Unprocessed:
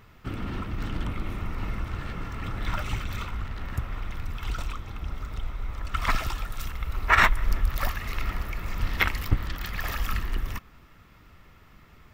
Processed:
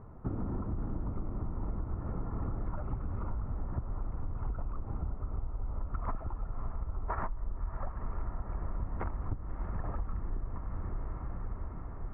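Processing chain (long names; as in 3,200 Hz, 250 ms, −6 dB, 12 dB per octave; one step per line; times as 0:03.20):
low-pass filter 1,000 Hz 24 dB per octave
feedback delay with all-pass diffusion 581 ms, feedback 68%, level −12 dB
downward compressor 12 to 1, threshold −35 dBFS, peak gain reduction 20 dB
level +4.5 dB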